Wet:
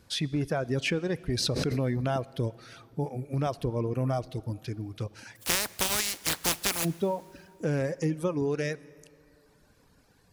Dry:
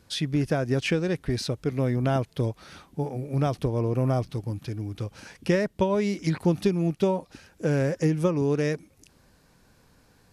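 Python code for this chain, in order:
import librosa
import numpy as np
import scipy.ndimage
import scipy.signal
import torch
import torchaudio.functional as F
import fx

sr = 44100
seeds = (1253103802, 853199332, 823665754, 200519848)

p1 = fx.spec_flatten(x, sr, power=0.18, at=(5.35, 6.84), fade=0.02)
p2 = fx.dereverb_blind(p1, sr, rt60_s=1.3)
p3 = fx.over_compress(p2, sr, threshold_db=-27.0, ratio=-1.0)
p4 = p2 + (p3 * 10.0 ** (-2.0 / 20.0))
p5 = fx.rev_plate(p4, sr, seeds[0], rt60_s=2.8, hf_ratio=0.75, predelay_ms=0, drr_db=19.5)
p6 = fx.pre_swell(p5, sr, db_per_s=28.0, at=(1.34, 2.0), fade=0.02)
y = p6 * 10.0 ** (-6.5 / 20.0)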